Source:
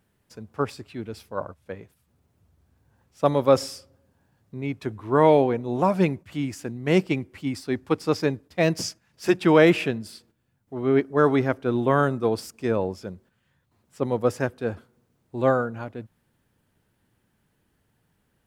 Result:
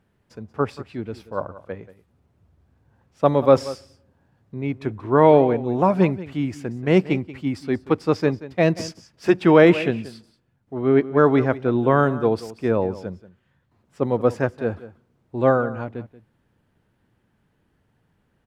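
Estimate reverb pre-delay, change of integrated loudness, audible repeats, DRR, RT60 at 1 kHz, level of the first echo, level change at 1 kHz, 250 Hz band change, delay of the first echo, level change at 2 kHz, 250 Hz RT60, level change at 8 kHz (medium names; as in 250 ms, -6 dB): no reverb, +3.5 dB, 1, no reverb, no reverb, -16.5 dB, +3.0 dB, +3.5 dB, 182 ms, +1.5 dB, no reverb, no reading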